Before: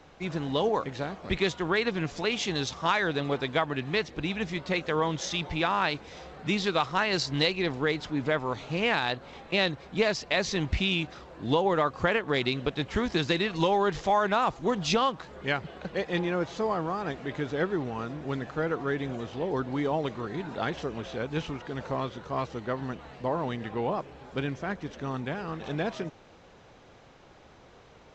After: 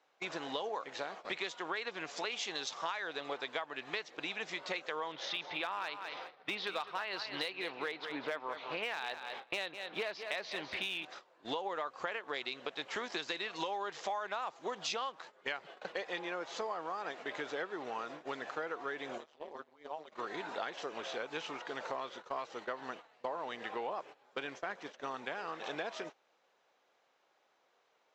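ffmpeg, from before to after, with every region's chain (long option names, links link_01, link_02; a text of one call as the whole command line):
ffmpeg -i in.wav -filter_complex "[0:a]asettb=1/sr,asplit=3[link_01][link_02][link_03];[link_01]atrim=end=5.124[link_04];[link_02]atrim=start=5.12:end=11.05,asetpts=PTS-STARTPTS,afade=type=in:duration=0.004:curve=qsin,afade=type=out:start_time=5.926:duration=0.004:curve=qsin,lowpass=frequency=4200:width=0.5412,lowpass=frequency=4200:width=1.3066,asoftclip=type=hard:threshold=-18dB,aecho=1:1:203|406|609:0.251|0.0603|0.0145,atrim=end_sample=261513[link_05];[link_03]atrim=start=11.046[link_06];[link_04][link_05]acrossfade=duration=0.004:curve1=hsin:curve2=qsin[link_07];[link_07][link_06]acrossfade=duration=0.004:curve1=qsin:curve2=hsin,asettb=1/sr,asplit=3[link_08][link_09][link_10];[link_08]atrim=end=19.184[link_11];[link_09]atrim=start=19.18:end=20.12,asetpts=PTS-STARTPTS,afade=type=in:duration=0.004:curve=qsin,afade=type=out:start_time=0.936:duration=0.004:curve=qsin,acompressor=threshold=-36dB:ratio=3:attack=3.2:release=140:knee=1:detection=peak,tremolo=f=150:d=0.947[link_12];[link_10]atrim=start=20.116[link_13];[link_11][link_12]acrossfade=duration=0.004:curve1=hsin:curve2=qsin[link_14];[link_14][link_13]acrossfade=duration=0.004:curve1=qsin:curve2=hsin,highpass=570,agate=range=-18dB:threshold=-45dB:ratio=16:detection=peak,acompressor=threshold=-38dB:ratio=5,volume=2dB" out.wav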